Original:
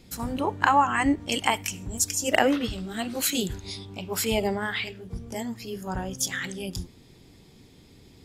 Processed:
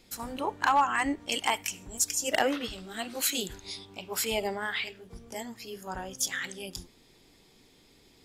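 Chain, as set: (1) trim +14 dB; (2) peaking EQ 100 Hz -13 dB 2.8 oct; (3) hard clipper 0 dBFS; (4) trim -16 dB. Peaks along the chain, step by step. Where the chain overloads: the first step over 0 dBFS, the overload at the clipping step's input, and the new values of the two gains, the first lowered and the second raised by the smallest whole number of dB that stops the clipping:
+9.0 dBFS, +9.0 dBFS, 0.0 dBFS, -16.0 dBFS; step 1, 9.0 dB; step 1 +5 dB, step 4 -7 dB

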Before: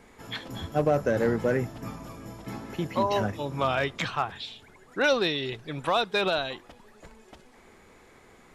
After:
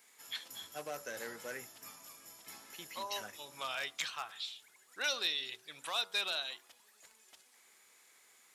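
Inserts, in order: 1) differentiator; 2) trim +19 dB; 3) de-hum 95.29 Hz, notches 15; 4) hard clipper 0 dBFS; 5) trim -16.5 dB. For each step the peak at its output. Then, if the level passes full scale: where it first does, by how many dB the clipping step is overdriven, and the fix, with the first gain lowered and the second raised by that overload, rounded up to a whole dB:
-22.0 dBFS, -3.0 dBFS, -3.0 dBFS, -3.0 dBFS, -19.5 dBFS; nothing clips

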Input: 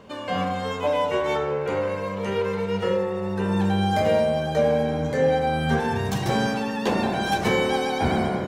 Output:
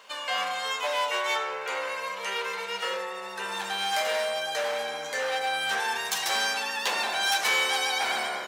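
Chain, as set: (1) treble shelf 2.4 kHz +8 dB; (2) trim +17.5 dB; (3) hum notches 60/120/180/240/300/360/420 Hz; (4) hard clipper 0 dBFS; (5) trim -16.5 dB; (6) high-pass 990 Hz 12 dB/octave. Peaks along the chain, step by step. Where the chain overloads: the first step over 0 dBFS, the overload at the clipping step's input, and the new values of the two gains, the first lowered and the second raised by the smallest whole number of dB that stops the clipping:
-8.0 dBFS, +9.5 dBFS, +9.0 dBFS, 0.0 dBFS, -16.5 dBFS, -12.5 dBFS; step 2, 9.0 dB; step 2 +8.5 dB, step 5 -7.5 dB

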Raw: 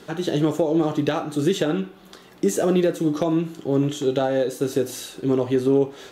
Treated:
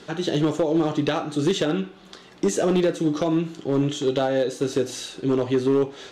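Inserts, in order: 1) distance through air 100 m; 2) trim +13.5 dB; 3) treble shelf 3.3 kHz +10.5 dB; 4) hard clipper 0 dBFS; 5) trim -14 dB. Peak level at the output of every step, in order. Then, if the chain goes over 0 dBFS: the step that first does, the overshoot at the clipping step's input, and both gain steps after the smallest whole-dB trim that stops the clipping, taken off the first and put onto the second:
-7.5 dBFS, +6.0 dBFS, +6.5 dBFS, 0.0 dBFS, -14.0 dBFS; step 2, 6.5 dB; step 2 +6.5 dB, step 5 -7 dB

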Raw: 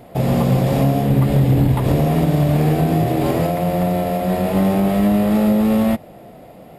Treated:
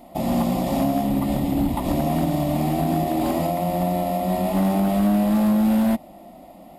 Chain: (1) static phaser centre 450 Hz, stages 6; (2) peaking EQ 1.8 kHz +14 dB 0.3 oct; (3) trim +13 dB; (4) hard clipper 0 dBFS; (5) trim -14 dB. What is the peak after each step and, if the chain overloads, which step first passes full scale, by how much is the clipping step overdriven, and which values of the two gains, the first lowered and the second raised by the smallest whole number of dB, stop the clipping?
-7.5 dBFS, -7.5 dBFS, +5.5 dBFS, 0.0 dBFS, -14.0 dBFS; step 3, 5.5 dB; step 3 +7 dB, step 5 -8 dB

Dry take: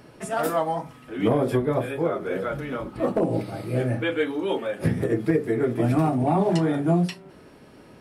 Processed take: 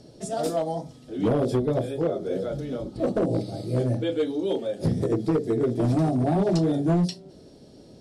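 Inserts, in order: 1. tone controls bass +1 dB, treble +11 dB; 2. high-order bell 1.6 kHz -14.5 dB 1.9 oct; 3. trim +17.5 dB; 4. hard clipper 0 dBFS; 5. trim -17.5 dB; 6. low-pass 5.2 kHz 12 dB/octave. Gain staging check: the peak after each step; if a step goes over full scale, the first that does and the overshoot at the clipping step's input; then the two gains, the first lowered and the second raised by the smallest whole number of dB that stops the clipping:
-8.5 dBFS, -8.5 dBFS, +9.0 dBFS, 0.0 dBFS, -17.5 dBFS, -17.5 dBFS; step 3, 9.0 dB; step 3 +8.5 dB, step 5 -8.5 dB

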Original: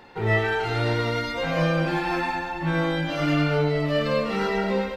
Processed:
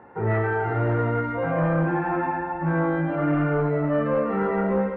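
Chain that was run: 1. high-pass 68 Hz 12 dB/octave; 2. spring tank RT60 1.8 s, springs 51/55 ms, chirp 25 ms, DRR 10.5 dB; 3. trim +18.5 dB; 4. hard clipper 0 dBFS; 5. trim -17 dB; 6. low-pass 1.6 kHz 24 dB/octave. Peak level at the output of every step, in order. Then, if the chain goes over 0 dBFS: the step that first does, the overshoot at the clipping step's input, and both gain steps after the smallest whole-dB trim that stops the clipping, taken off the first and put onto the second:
-11.0 dBFS, -10.5 dBFS, +8.0 dBFS, 0.0 dBFS, -17.0 dBFS, -15.5 dBFS; step 3, 8.0 dB; step 3 +10.5 dB, step 5 -9 dB

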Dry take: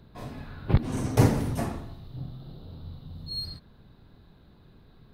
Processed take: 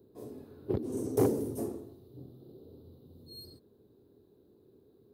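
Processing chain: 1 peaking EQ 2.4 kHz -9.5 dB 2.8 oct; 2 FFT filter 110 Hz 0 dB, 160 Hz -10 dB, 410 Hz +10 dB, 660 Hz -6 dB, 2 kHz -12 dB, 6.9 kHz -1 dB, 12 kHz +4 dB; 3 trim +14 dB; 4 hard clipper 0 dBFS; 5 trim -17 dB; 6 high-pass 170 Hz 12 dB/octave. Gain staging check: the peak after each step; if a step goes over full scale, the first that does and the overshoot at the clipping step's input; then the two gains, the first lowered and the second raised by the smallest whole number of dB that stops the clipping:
-7.5 dBFS, -7.5 dBFS, +6.5 dBFS, 0.0 dBFS, -17.0 dBFS, -14.0 dBFS; step 3, 6.5 dB; step 3 +7 dB, step 5 -10 dB

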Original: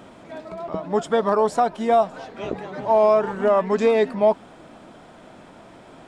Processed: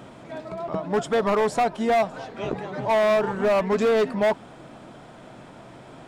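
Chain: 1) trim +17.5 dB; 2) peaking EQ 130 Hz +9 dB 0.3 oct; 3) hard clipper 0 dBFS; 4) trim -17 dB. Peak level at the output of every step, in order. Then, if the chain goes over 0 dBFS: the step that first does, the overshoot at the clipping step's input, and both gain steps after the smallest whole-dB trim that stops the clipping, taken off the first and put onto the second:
+9.0 dBFS, +9.0 dBFS, 0.0 dBFS, -17.0 dBFS; step 1, 9.0 dB; step 1 +8.5 dB, step 4 -8 dB

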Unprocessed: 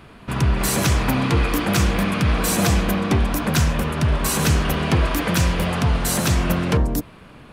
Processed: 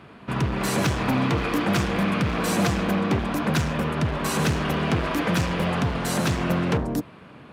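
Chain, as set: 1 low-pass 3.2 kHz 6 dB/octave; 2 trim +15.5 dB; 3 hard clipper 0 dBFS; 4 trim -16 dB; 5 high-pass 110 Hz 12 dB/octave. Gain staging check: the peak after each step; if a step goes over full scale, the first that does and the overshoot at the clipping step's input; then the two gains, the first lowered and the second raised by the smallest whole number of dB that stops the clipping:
-8.0 dBFS, +7.5 dBFS, 0.0 dBFS, -16.0 dBFS, -10.0 dBFS; step 2, 7.5 dB; step 2 +7.5 dB, step 4 -8 dB

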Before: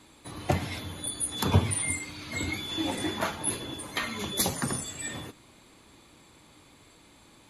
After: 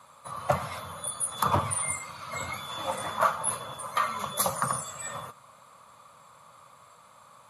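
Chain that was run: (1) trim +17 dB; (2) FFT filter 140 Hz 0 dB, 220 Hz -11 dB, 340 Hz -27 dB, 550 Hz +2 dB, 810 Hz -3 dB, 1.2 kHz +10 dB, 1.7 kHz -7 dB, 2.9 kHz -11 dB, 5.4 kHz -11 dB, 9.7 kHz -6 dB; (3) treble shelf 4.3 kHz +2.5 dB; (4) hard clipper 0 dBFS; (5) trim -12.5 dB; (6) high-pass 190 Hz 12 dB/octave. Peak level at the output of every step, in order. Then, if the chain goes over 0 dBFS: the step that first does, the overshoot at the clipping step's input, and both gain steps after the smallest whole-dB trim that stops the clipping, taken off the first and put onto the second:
+7.5 dBFS, +6.0 dBFS, +6.0 dBFS, 0.0 dBFS, -12.5 dBFS, -10.5 dBFS; step 1, 6.0 dB; step 1 +11 dB, step 5 -6.5 dB

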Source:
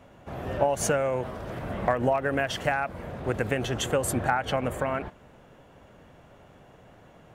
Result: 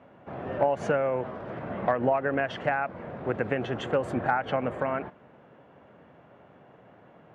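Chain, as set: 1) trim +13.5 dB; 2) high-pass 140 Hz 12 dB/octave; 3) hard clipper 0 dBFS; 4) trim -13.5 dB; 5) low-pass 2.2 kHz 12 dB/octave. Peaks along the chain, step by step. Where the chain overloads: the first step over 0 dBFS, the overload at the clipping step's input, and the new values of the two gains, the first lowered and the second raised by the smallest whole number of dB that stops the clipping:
+4.0 dBFS, +4.0 dBFS, 0.0 dBFS, -13.5 dBFS, -13.0 dBFS; step 1, 4.0 dB; step 1 +9.5 dB, step 4 -9.5 dB

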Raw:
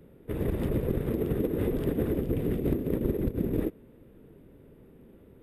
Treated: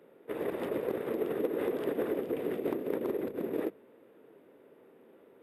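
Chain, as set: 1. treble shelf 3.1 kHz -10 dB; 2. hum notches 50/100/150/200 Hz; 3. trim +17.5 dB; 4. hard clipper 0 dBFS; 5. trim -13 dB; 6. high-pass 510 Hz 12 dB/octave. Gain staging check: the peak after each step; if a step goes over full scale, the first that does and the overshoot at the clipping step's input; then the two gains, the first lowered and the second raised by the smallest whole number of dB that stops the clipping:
-13.0 dBFS, -14.0 dBFS, +3.5 dBFS, 0.0 dBFS, -13.0 dBFS, -17.5 dBFS; step 3, 3.5 dB; step 3 +13.5 dB, step 5 -9 dB

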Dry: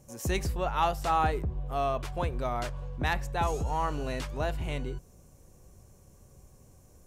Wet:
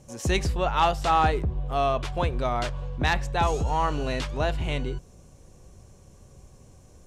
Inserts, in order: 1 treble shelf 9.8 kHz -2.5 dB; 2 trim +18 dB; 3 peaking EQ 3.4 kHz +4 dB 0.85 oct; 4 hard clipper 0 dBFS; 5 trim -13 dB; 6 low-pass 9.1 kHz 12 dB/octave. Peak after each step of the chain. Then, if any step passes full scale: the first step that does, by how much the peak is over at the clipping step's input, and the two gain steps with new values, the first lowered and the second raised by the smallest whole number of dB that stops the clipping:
-16.0 dBFS, +2.0 dBFS, +3.5 dBFS, 0.0 dBFS, -13.0 dBFS, -12.5 dBFS; step 2, 3.5 dB; step 2 +14 dB, step 5 -9 dB

